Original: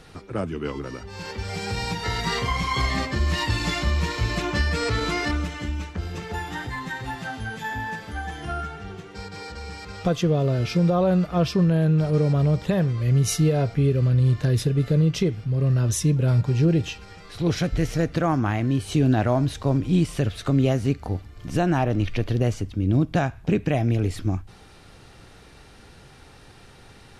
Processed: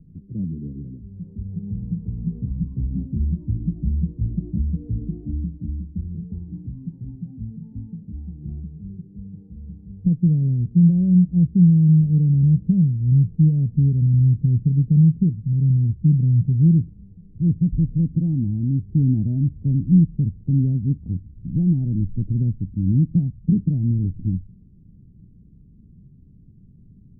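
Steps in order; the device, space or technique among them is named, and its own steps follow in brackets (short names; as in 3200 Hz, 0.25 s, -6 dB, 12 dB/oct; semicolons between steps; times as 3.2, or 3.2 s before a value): the neighbour's flat through the wall (LPF 240 Hz 24 dB/oct; bell 180 Hz +7.5 dB 0.87 oct)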